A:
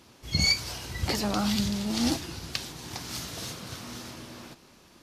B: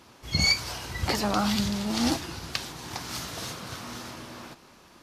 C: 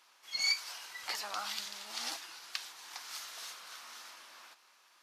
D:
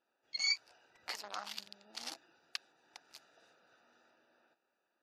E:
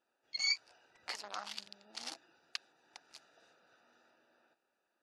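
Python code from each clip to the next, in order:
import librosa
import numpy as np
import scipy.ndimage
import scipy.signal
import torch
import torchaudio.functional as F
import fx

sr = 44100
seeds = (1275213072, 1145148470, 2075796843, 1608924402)

y1 = fx.peak_eq(x, sr, hz=1100.0, db=5.5, octaves=1.9)
y2 = scipy.signal.sosfilt(scipy.signal.butter(2, 1100.0, 'highpass', fs=sr, output='sos'), y1)
y2 = F.gain(torch.from_numpy(y2), -7.5).numpy()
y3 = fx.wiener(y2, sr, points=41)
y3 = fx.spec_gate(y3, sr, threshold_db=-30, keep='strong')
y3 = F.gain(torch.from_numpy(y3), -1.5).numpy()
y4 = scipy.signal.sosfilt(scipy.signal.butter(6, 11000.0, 'lowpass', fs=sr, output='sos'), y3)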